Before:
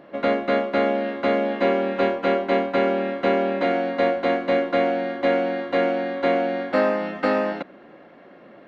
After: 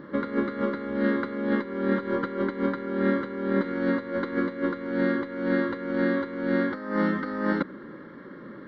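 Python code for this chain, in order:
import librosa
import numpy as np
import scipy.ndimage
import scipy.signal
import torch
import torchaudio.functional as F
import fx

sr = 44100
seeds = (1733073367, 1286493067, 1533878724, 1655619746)

y = fx.high_shelf(x, sr, hz=2100.0, db=-10.0)
y = fx.over_compress(y, sr, threshold_db=-26.0, ratio=-0.5)
y = fx.fixed_phaser(y, sr, hz=2600.0, stages=6)
y = y * librosa.db_to_amplitude(5.5)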